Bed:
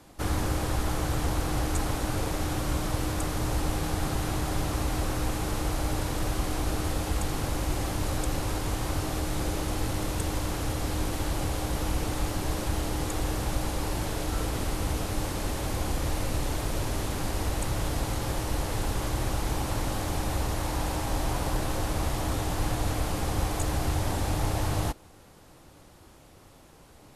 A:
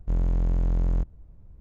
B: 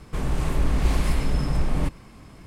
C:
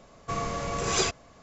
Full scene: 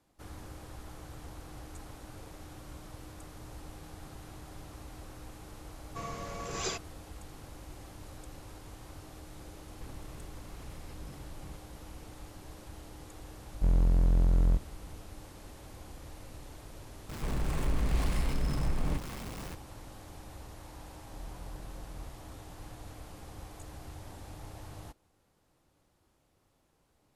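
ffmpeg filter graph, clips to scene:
-filter_complex "[2:a]asplit=2[a][b];[1:a]asplit=2[c][d];[0:a]volume=-18.5dB[e];[a]acompressor=threshold=-32dB:ratio=6:attack=50:release=35:knee=1:detection=rms[f];[b]aeval=exprs='val(0)+0.5*0.0376*sgn(val(0))':c=same[g];[d]acompressor=threshold=-30dB:ratio=6:attack=3.2:release=140:knee=1:detection=peak[h];[3:a]atrim=end=1.42,asetpts=PTS-STARTPTS,volume=-9.5dB,afade=t=in:d=0.004:c=hsin,afade=t=out:st=1.416:d=0.004:c=hsin,adelay=5670[i];[f]atrim=end=2.46,asetpts=PTS-STARTPTS,volume=-16.5dB,afade=t=in:d=0.004:c=hsin,afade=t=out:st=2.456:d=0.004:c=hsin,adelay=9680[j];[c]atrim=end=1.6,asetpts=PTS-STARTPTS,volume=-1dB,afade=t=in:d=0.004:c=hsin,afade=t=out:st=1.596:d=0.004:c=hsin,adelay=13540[k];[g]atrim=end=2.46,asetpts=PTS-STARTPTS,volume=-9dB,afade=t=in:d=0.004:c=hsin,afade=t=out:st=2.456:d=0.004:c=hsin,adelay=17090[l];[h]atrim=end=1.6,asetpts=PTS-STARTPTS,volume=-15dB,afade=t=in:d=0.004:c=hsin,afade=t=out:st=1.596:d=0.004:c=hsin,adelay=21060[m];[e][i][j][k][l][m]amix=inputs=6:normalize=0"

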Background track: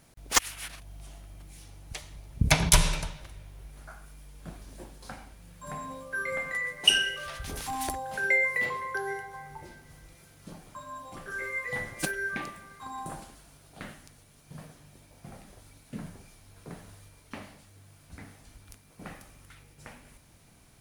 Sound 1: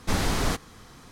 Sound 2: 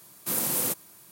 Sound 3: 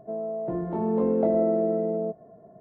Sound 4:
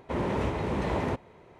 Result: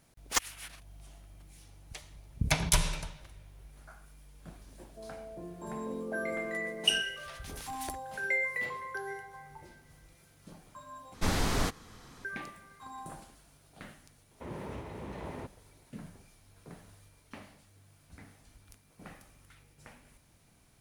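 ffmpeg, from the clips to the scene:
-filter_complex "[0:a]volume=-6dB,asplit=2[a][b];[a]atrim=end=11.144[c];[1:a]atrim=end=1.11,asetpts=PTS-STARTPTS,volume=-4dB[d];[b]atrim=start=12.246[e];[3:a]atrim=end=2.6,asetpts=PTS-STARTPTS,volume=-15dB,afade=t=in:d=0.004:c=hsin,afade=t=out:st=2.596:d=0.004:c=hsin,adelay=215649S[f];[4:a]atrim=end=1.59,asetpts=PTS-STARTPTS,volume=-13dB,afade=t=in:d=0.004:c=hsin,afade=t=out:st=1.586:d=0.004:c=hsin,adelay=14310[g];[c][d]acrossfade=d=0.004:c1=hsin:c2=hsin[h];[h][e]acrossfade=d=0.004:c1=hsin:c2=hsin[i];[i][f][g]amix=inputs=3:normalize=0"

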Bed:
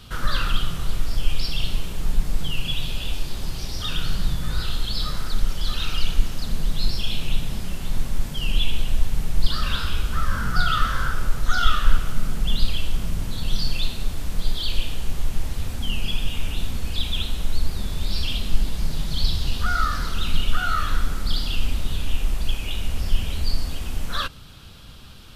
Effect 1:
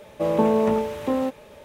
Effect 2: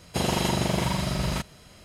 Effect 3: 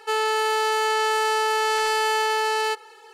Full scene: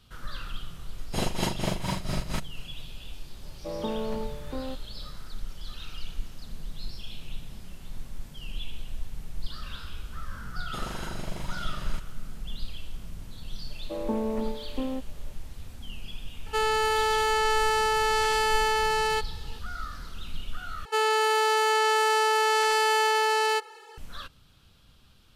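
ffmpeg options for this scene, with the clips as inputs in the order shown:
-filter_complex "[2:a]asplit=2[a][b];[1:a]asplit=2[c][d];[3:a]asplit=2[e][f];[0:a]volume=-14.5dB[g];[a]tremolo=f=4.3:d=0.83[h];[d]lowshelf=f=180:t=q:w=3:g=-8.5[i];[g]asplit=2[j][k];[j]atrim=end=20.854[l];[f]atrim=end=3.13,asetpts=PTS-STARTPTS,volume=-1dB[m];[k]atrim=start=23.976[n];[h]atrim=end=1.84,asetpts=PTS-STARTPTS,volume=-1.5dB,afade=t=in:d=0.004:c=hsin,afade=t=out:st=1.836:d=0.004:c=hsin,adelay=980[o];[c]atrim=end=1.64,asetpts=PTS-STARTPTS,volume=-12.5dB,afade=t=in:d=0.004:c=hsin,afade=t=out:st=1.636:d=0.004:c=hsin,adelay=152145S[p];[b]atrim=end=1.84,asetpts=PTS-STARTPTS,volume=-13.5dB,afade=t=in:d=0.004:c=hsin,afade=t=out:st=1.836:d=0.004:c=hsin,adelay=466578S[q];[i]atrim=end=1.64,asetpts=PTS-STARTPTS,volume=-12.5dB,afade=t=in:d=0.004:c=hsin,afade=t=out:st=1.636:d=0.004:c=hsin,adelay=13700[r];[e]atrim=end=3.13,asetpts=PTS-STARTPTS,volume=-2.5dB,afade=t=in:d=0.004:c=hsin,afade=t=out:st=3.126:d=0.004:c=hsin,adelay=16460[s];[l][m]acrossfade=d=0.004:c1=hsin:c2=hsin[t];[t][n]acrossfade=d=0.004:c1=hsin:c2=hsin[u];[u][o][p][q][r][s]amix=inputs=6:normalize=0"

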